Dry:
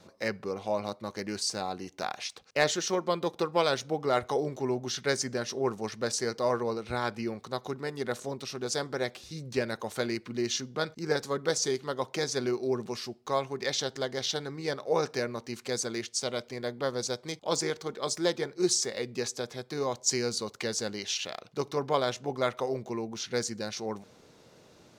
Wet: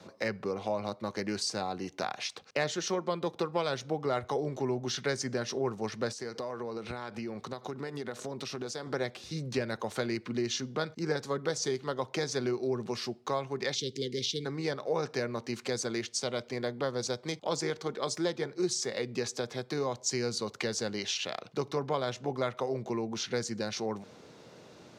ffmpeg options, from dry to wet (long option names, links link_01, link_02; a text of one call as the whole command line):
ffmpeg -i in.wav -filter_complex "[0:a]asettb=1/sr,asplit=3[link_01][link_02][link_03];[link_01]atrim=end=6.124[link_04];[link_02]atrim=start=6.12:end=8.87,asetpts=PTS-STARTPTS,afade=type=in:duration=0.004:curve=qsin,afade=type=out:start_time=2.746:duration=0.004:curve=qsin,acompressor=threshold=-37dB:ratio=10:attack=3.2:release=140:knee=1:detection=peak[link_05];[link_03]atrim=start=8.866[link_06];[link_04][link_05]acrossfade=duration=0.004:curve1=hsin:curve2=qsin[link_07];[link_07][link_06]acrossfade=duration=0.004:curve1=qsin:curve2=hsin,asplit=3[link_08][link_09][link_10];[link_08]afade=type=out:start_time=13.74:duration=0.02[link_11];[link_09]asuperstop=centerf=1000:order=12:qfactor=0.58,afade=type=in:start_time=13.74:duration=0.02,afade=type=out:start_time=14.44:duration=0.02[link_12];[link_10]afade=type=in:start_time=14.44:duration=0.02[link_13];[link_11][link_12][link_13]amix=inputs=3:normalize=0,highpass=93,highshelf=frequency=8800:gain=-11,acrossover=split=130[link_14][link_15];[link_15]acompressor=threshold=-36dB:ratio=2.5[link_16];[link_14][link_16]amix=inputs=2:normalize=0,volume=4.5dB" out.wav